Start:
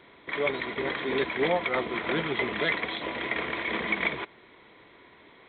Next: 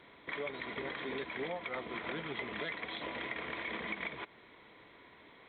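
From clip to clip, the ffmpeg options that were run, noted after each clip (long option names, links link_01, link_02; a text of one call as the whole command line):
ffmpeg -i in.wav -af "equalizer=frequency=370:width=7.1:gain=-4.5,acompressor=threshold=-34dB:ratio=4,volume=-3.5dB" out.wav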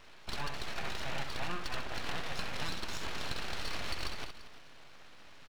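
ffmpeg -i in.wav -af "aeval=exprs='abs(val(0))':channel_layout=same,aecho=1:1:65|232|341:0.398|0.178|0.15,volume=3.5dB" out.wav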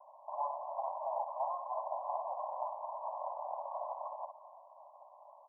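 ffmpeg -i in.wav -af "asuperpass=centerf=780:order=20:qfactor=1.5,volume=9dB" out.wav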